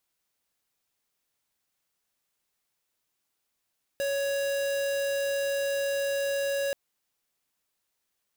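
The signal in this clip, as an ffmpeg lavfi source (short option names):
-f lavfi -i "aevalsrc='0.0376*(2*lt(mod(557*t,1),0.5)-1)':d=2.73:s=44100"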